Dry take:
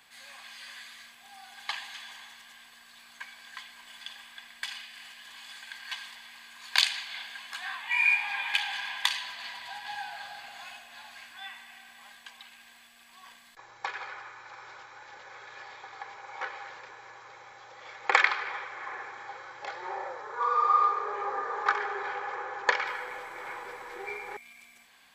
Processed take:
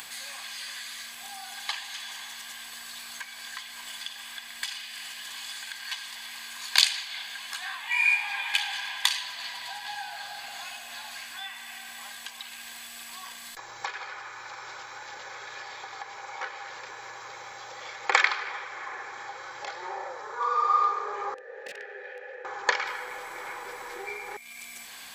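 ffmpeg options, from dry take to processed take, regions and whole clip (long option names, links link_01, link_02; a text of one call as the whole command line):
ffmpeg -i in.wav -filter_complex "[0:a]asettb=1/sr,asplit=3[link_01][link_02][link_03];[link_01]atrim=end=21.344[link_04];[link_02]atrim=start=21.34:end=22.45,asetpts=PTS-STARTPTS,afade=type=in:duration=0.004:curve=qsin,afade=type=out:start_time=1.106:duration=0.004:curve=qsin,bandreject=frequency=230:width=5.3,aeval=exprs='(mod(13.3*val(0)+1,2)-1)/13.3':channel_layout=same,asplit=3[link_05][link_06][link_07];[link_05]bandpass=frequency=530:width_type=q:width=8,volume=0dB[link_08];[link_06]bandpass=frequency=1840:width_type=q:width=8,volume=-6dB[link_09];[link_07]bandpass=frequency=2480:width_type=q:width=8,volume=-9dB[link_10];[link_08][link_09][link_10]amix=inputs=3:normalize=0[link_11];[link_03]atrim=start=22.446[link_12];[link_04][link_11]acrossfade=duration=0.004:curve1=hsin:curve2=qsin[link_13];[link_13][link_12]acrossfade=duration=0.004:curve1=qsin:curve2=hsin,acompressor=mode=upward:threshold=-34dB:ratio=2.5,bass=frequency=250:gain=-1,treble=frequency=4000:gain=8" out.wav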